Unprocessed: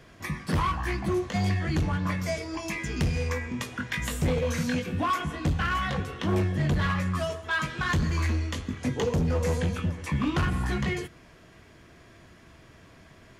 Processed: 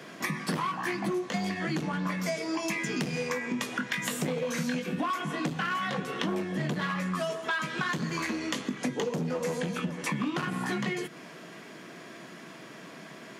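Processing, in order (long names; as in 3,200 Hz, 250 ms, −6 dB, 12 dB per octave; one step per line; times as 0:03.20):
Butterworth high-pass 160 Hz 36 dB per octave
downward compressor 6 to 1, threshold −37 dBFS, peak gain reduction 13.5 dB
level +8.5 dB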